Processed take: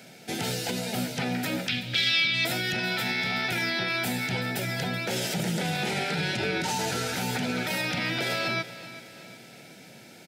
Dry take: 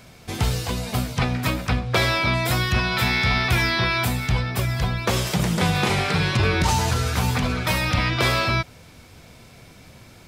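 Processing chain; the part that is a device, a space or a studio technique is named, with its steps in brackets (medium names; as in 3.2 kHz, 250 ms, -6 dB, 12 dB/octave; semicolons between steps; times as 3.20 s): PA system with an anti-feedback notch (high-pass 160 Hz 24 dB/octave; Butterworth band-stop 1.1 kHz, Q 2.8; peak limiter -20 dBFS, peak gain reduction 10.5 dB); 1.68–2.45 s: FFT filter 120 Hz 0 dB, 820 Hz -17 dB, 3.2 kHz +12 dB, 10 kHz -5 dB; feedback delay 378 ms, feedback 49%, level -15.5 dB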